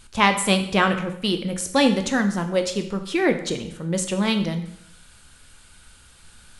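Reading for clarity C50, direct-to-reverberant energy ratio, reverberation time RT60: 10.0 dB, 6.5 dB, 0.75 s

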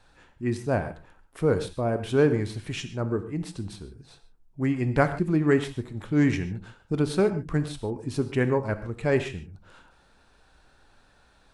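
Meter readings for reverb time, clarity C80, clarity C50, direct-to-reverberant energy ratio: no single decay rate, 13.5 dB, 11.5 dB, 9.5 dB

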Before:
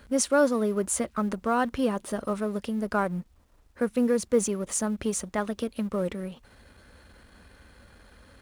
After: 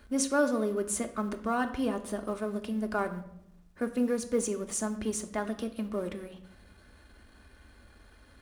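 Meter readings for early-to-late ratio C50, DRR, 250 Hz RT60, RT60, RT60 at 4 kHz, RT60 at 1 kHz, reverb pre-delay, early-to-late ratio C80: 13.0 dB, 5.0 dB, 1.1 s, 0.80 s, 0.65 s, 0.70 s, 3 ms, 15.0 dB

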